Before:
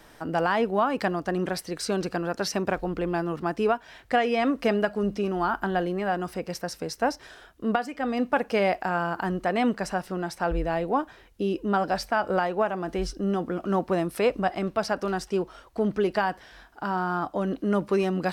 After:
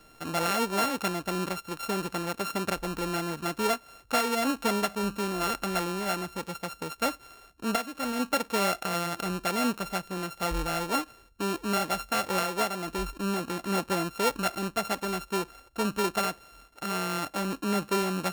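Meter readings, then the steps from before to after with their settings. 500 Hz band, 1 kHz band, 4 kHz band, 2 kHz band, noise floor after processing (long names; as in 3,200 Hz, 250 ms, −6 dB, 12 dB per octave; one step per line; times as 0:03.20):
−6.0 dB, −3.0 dB, +4.0 dB, −2.0 dB, −56 dBFS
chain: samples sorted by size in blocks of 32 samples
level −3.5 dB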